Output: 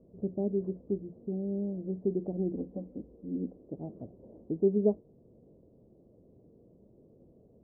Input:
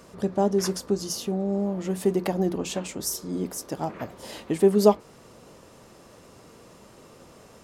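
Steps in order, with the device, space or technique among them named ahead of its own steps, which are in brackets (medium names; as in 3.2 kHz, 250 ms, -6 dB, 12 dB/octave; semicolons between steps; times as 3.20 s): 2.52–3.56 s: comb 3.9 ms, depth 53%; under water (low-pass 450 Hz 24 dB/octave; peaking EQ 680 Hz +5 dB 0.43 oct); trim -6.5 dB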